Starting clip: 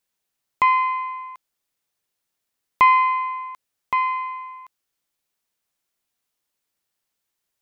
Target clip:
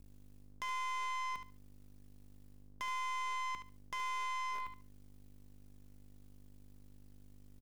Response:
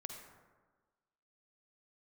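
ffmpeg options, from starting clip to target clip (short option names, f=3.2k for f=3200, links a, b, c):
-filter_complex "[0:a]areverse,acompressor=threshold=-27dB:ratio=16,areverse,aeval=exprs='val(0)+0.00112*(sin(2*PI*50*n/s)+sin(2*PI*2*50*n/s)/2+sin(2*PI*3*50*n/s)/3+sin(2*PI*4*50*n/s)/4+sin(2*PI*5*50*n/s)/5)':c=same,aeval=exprs='max(val(0),0)':c=same,asplit=2[a][b];[b]acrusher=bits=5:mix=0:aa=0.000001,volume=-5.5dB[c];[a][c]amix=inputs=2:normalize=0,acrossover=split=480|2400[d][e][f];[d]acompressor=threshold=-42dB:ratio=4[g];[e]acompressor=threshold=-39dB:ratio=4[h];[f]acompressor=threshold=-50dB:ratio=4[i];[g][h][i]amix=inputs=3:normalize=0,aeval=exprs='(tanh(158*val(0)+0.3)-tanh(0.3))/158':c=same,aecho=1:1:72|144|216:0.355|0.0639|0.0115,volume=7.5dB"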